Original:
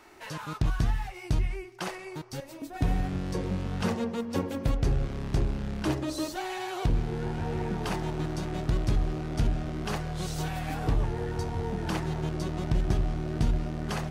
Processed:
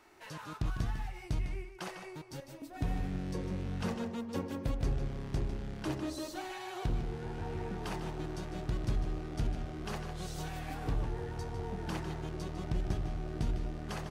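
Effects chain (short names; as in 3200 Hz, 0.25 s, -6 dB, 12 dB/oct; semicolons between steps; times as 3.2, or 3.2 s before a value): outdoor echo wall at 26 m, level -8 dB; gain -7.5 dB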